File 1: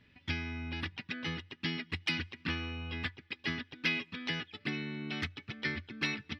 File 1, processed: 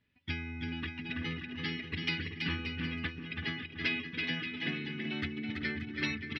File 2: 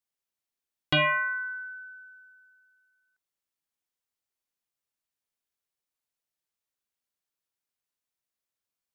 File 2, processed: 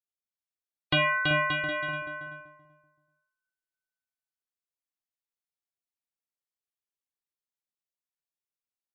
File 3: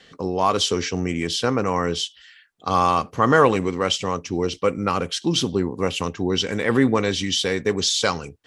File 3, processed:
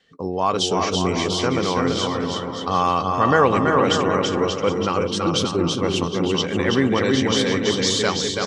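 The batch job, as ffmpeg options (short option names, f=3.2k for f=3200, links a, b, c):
-filter_complex "[0:a]asplit=2[a][b];[b]aecho=0:1:330|577.5|763.1|902.3|1007:0.631|0.398|0.251|0.158|0.1[c];[a][c]amix=inputs=2:normalize=0,afftdn=nr=12:nf=-41,asplit=2[d][e];[e]adelay=383,lowpass=f=930:p=1,volume=-6dB,asplit=2[f][g];[g]adelay=383,lowpass=f=930:p=1,volume=0.22,asplit=2[h][i];[i]adelay=383,lowpass=f=930:p=1,volume=0.22[j];[f][h][j]amix=inputs=3:normalize=0[k];[d][k]amix=inputs=2:normalize=0,volume=-1dB"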